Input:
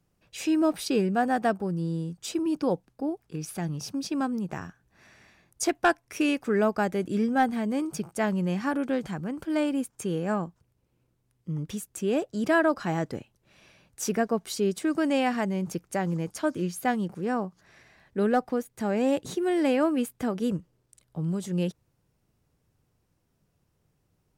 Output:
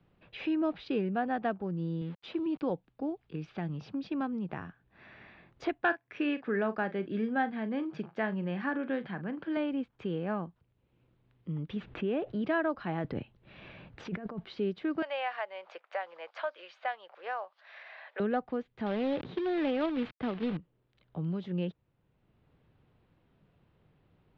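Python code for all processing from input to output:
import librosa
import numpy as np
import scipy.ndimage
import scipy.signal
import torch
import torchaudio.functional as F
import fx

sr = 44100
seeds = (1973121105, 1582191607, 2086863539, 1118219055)

y = fx.chain(x, sr, fx.highpass(hz=75.0, slope=12),
    fx.sample_gate(floor_db=-44.5), at=(2.01, 2.7))
y = fx.chain(y, sr, fx.highpass(hz=150.0, slope=12),
    fx.peak_eq(hz=1700.0, db=7.5, octaves=0.23),
    fx.doubler(ms=41.0, db=-13.5), at=(5.81, 9.57))
y = fx.chain(y, sr, fx.lowpass(hz=3200.0, slope=12),
    fx.env_flatten(amount_pct=50), at=(11.76, 12.42))
y = fx.chain(y, sr, fx.over_compress(threshold_db=-35.0, ratio=-1.0),
    fx.low_shelf(hz=170.0, db=7.5), at=(13.04, 14.45))
y = fx.chain(y, sr, fx.cheby1_highpass(hz=580.0, order=4),
    fx.high_shelf(hz=4300.0, db=6.0),
    fx.band_squash(depth_pct=40), at=(15.02, 18.2))
y = fx.chain(y, sr, fx.lowpass(hz=3300.0, slope=6),
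    fx.quant_companded(bits=4),
    fx.sustainer(db_per_s=130.0), at=(18.86, 20.57))
y = scipy.signal.sosfilt(scipy.signal.butter(6, 3700.0, 'lowpass', fs=sr, output='sos'), y)
y = fx.band_squash(y, sr, depth_pct=40)
y = y * 10.0 ** (-6.0 / 20.0)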